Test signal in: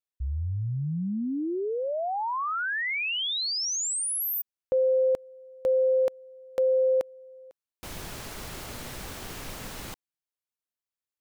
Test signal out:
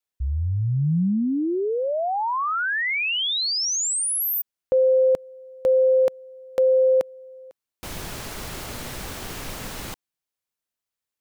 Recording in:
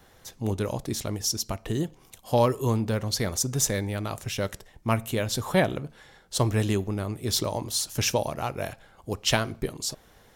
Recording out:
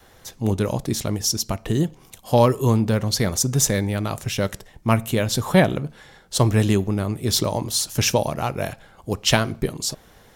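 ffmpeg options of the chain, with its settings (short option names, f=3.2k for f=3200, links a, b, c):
-af "adynamicequalizer=threshold=0.01:dfrequency=170:dqfactor=1.4:tfrequency=170:tqfactor=1.4:attack=5:release=100:ratio=0.375:range=2:mode=boostabove:tftype=bell,volume=5dB"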